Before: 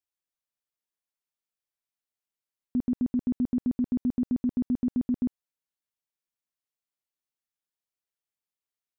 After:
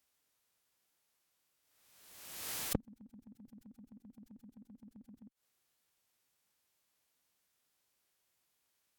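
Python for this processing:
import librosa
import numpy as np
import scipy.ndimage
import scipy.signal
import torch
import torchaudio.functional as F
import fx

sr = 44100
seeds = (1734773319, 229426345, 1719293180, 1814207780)

y = fx.gate_flip(x, sr, shuts_db=-32.0, range_db=-39)
y = scipy.signal.sosfilt(scipy.signal.butter(2, 45.0, 'highpass', fs=sr, output='sos'), y)
y = fx.pitch_keep_formants(y, sr, semitones=-3.5)
y = fx.pre_swell(y, sr, db_per_s=44.0)
y = F.gain(torch.from_numpy(y), 13.0).numpy()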